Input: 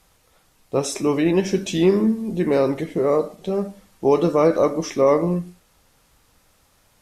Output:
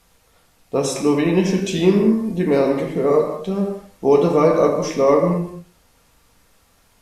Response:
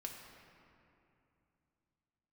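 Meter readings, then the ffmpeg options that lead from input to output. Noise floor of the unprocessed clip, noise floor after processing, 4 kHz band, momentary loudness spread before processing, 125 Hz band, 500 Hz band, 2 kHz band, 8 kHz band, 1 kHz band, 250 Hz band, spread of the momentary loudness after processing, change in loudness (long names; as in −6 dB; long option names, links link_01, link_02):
−60 dBFS, −58 dBFS, +2.0 dB, 8 LU, +3.5 dB, +2.5 dB, +2.5 dB, +1.5 dB, +2.5 dB, +2.5 dB, 8 LU, +2.5 dB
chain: -filter_complex "[1:a]atrim=start_sample=2205,afade=type=out:start_time=0.28:duration=0.01,atrim=end_sample=12789[link_01];[0:a][link_01]afir=irnorm=-1:irlink=0,volume=5.5dB"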